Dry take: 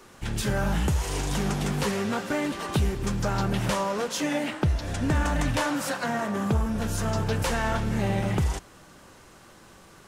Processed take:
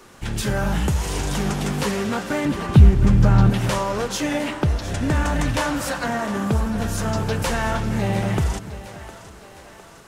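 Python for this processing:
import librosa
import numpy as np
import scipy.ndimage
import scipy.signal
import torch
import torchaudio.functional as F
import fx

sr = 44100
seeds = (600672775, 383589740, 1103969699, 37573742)

p1 = fx.bass_treble(x, sr, bass_db=12, treble_db=-9, at=(2.45, 3.5))
p2 = p1 + fx.echo_split(p1, sr, split_hz=350.0, low_ms=288, high_ms=708, feedback_pct=52, wet_db=-14.0, dry=0)
y = p2 * 10.0 ** (3.5 / 20.0)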